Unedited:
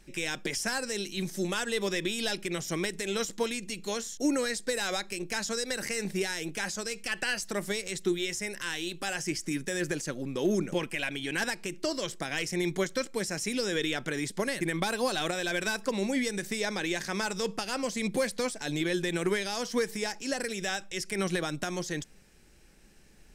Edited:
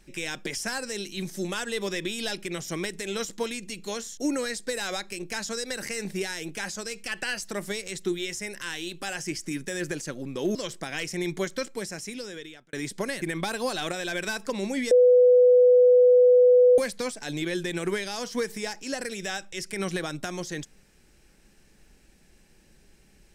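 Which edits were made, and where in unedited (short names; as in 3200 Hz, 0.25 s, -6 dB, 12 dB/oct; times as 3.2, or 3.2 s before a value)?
10.55–11.94 cut
13.01–14.12 fade out
16.3–18.17 bleep 496 Hz -13 dBFS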